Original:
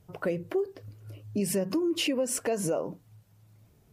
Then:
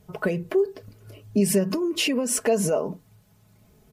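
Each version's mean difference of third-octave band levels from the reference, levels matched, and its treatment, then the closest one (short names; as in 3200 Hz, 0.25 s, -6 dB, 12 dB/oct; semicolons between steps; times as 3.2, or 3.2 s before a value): 1.5 dB: comb 4.7 ms, depth 55%; gain +5 dB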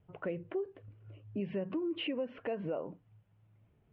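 4.0 dB: steep low-pass 3200 Hz 48 dB/oct; gain -7.5 dB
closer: first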